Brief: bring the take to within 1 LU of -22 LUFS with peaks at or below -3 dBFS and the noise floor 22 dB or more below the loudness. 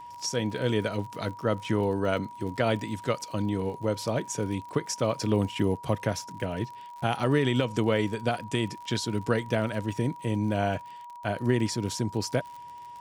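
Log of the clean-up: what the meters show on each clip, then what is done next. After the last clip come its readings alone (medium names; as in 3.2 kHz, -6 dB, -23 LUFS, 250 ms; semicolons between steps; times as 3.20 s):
tick rate 55 per s; steady tone 960 Hz; tone level -41 dBFS; loudness -29.0 LUFS; peak level -11.0 dBFS; loudness target -22.0 LUFS
-> de-click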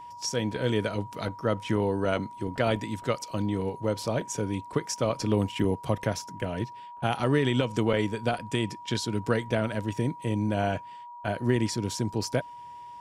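tick rate 0.15 per s; steady tone 960 Hz; tone level -41 dBFS
-> band-stop 960 Hz, Q 30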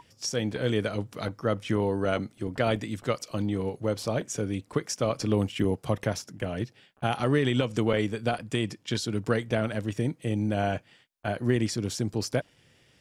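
steady tone not found; loudness -29.0 LUFS; peak level -11.5 dBFS; loudness target -22.0 LUFS
-> trim +7 dB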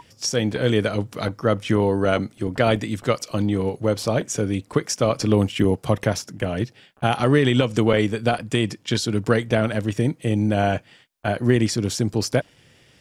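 loudness -22.0 LUFS; peak level -4.5 dBFS; noise floor -56 dBFS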